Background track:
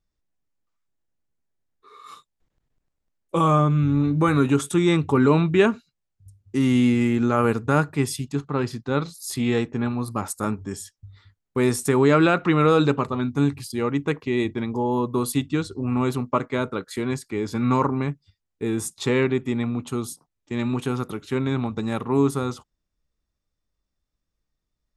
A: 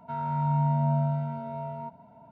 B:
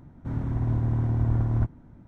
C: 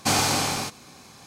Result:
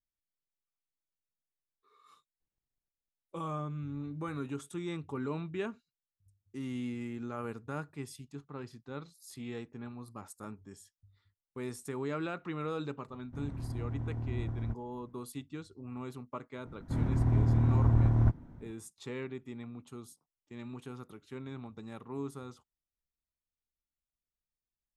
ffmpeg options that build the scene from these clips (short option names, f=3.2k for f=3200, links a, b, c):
-filter_complex "[2:a]asplit=2[a][b];[0:a]volume=-19dB[c];[a]atrim=end=2.07,asetpts=PTS-STARTPTS,volume=-12dB,afade=t=in:d=0.004:c=hsin,afade=t=out:st=2.066:d=0.004:c=hsin,adelay=13080[d];[b]atrim=end=2.07,asetpts=PTS-STARTPTS,volume=-1dB,afade=t=in:d=0.004:c=hsin,afade=t=out:st=2.066:d=0.004:c=hsin,adelay=16650[e];[c][d][e]amix=inputs=3:normalize=0"